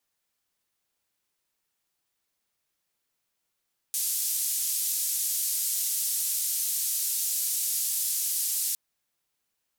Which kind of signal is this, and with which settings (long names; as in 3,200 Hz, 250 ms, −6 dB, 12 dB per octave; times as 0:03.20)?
band-limited noise 6,400–14,000 Hz, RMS −28.5 dBFS 4.81 s